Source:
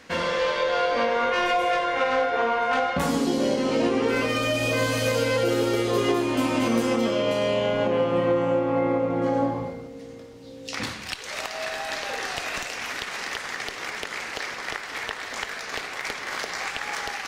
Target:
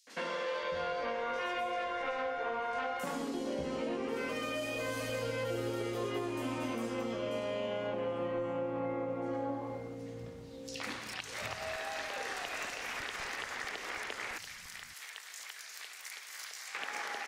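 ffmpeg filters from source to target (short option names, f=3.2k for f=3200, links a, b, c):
-filter_complex "[0:a]asettb=1/sr,asplit=3[a][b][c];[a]atrim=end=14.314[d];[b]atrim=start=14.31:end=16.68,asetpts=PTS-STARTPTS,afade=t=in:d=0.004:c=qsin,afade=t=out:st=2.366:d=0.004:c=qsin,aderivative[e];[c]atrim=start=16.676[f];[d][e]acrossfade=d=0.004:c1=hsin:c2=qsin[g];[g][f]acrossfade=d=0.004:c1=qsin:c2=hsin,acompressor=threshold=-32dB:ratio=2.5,acrossover=split=180|4600[h][i][j];[i]adelay=70[k];[h]adelay=620[l];[l][k][j]amix=inputs=3:normalize=0,volume=-4.5dB"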